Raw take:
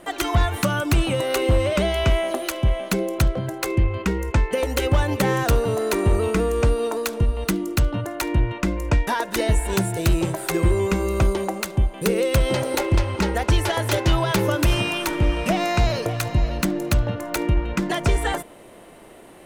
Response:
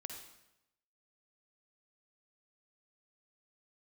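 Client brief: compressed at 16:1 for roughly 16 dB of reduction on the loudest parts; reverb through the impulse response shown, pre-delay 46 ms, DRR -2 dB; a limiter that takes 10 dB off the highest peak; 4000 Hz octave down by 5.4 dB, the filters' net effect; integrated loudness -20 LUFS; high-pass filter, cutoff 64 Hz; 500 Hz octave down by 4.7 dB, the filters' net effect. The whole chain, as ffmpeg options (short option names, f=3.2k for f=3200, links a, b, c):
-filter_complex "[0:a]highpass=64,equalizer=f=500:t=o:g=-6,equalizer=f=4k:t=o:g=-7.5,acompressor=threshold=-32dB:ratio=16,alimiter=level_in=3.5dB:limit=-24dB:level=0:latency=1,volume=-3.5dB,asplit=2[a][b];[1:a]atrim=start_sample=2205,adelay=46[c];[b][c]afir=irnorm=-1:irlink=0,volume=5dB[d];[a][d]amix=inputs=2:normalize=0,volume=13.5dB"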